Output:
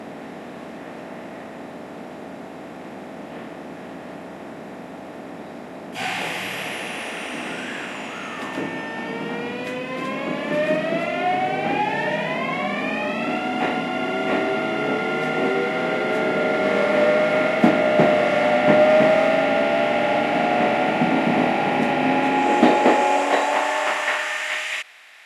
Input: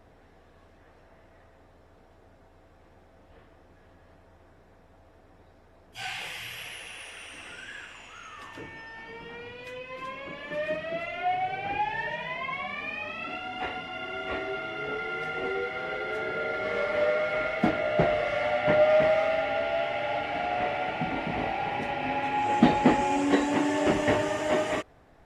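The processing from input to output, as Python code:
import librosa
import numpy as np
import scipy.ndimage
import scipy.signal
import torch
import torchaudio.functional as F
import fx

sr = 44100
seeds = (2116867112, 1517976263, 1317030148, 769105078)

y = fx.bin_compress(x, sr, power=0.6)
y = fx.filter_sweep_highpass(y, sr, from_hz=200.0, to_hz=2300.0, start_s=22.12, end_s=24.72, q=1.3)
y = F.gain(torch.from_numpy(y), 3.5).numpy()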